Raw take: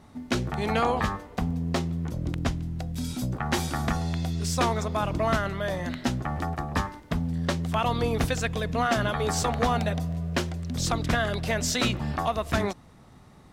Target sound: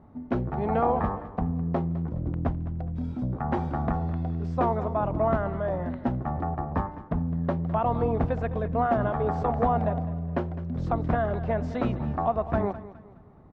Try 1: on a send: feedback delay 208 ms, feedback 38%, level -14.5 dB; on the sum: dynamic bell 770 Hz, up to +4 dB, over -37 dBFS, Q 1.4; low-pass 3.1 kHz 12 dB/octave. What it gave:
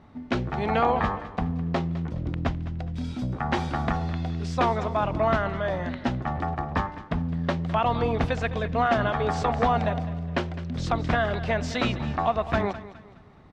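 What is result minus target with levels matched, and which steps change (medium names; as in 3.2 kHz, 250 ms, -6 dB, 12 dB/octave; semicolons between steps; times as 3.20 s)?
4 kHz band +16.5 dB
change: low-pass 980 Hz 12 dB/octave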